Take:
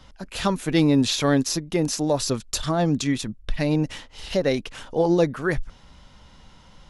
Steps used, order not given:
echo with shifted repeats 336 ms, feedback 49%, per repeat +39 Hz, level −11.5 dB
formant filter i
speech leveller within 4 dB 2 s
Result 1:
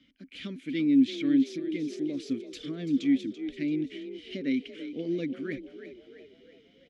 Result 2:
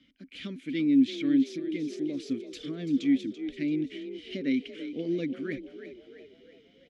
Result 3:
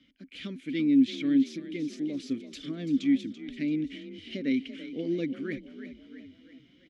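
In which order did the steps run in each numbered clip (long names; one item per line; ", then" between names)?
formant filter, then speech leveller, then echo with shifted repeats
formant filter, then echo with shifted repeats, then speech leveller
echo with shifted repeats, then formant filter, then speech leveller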